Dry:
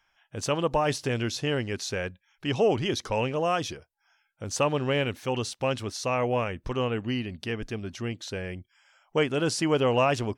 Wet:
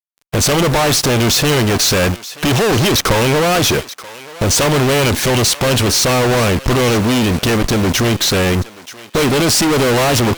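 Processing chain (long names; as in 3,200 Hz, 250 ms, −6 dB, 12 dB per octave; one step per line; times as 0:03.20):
log-companded quantiser 6 bits
fuzz pedal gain 48 dB, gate −55 dBFS
harmonic generator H 3 −10 dB, 8 −38 dB, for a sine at −9 dBFS
on a send: feedback echo with a high-pass in the loop 931 ms, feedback 24%, high-pass 800 Hz, level −15 dB
on the sum: level +6.5 dB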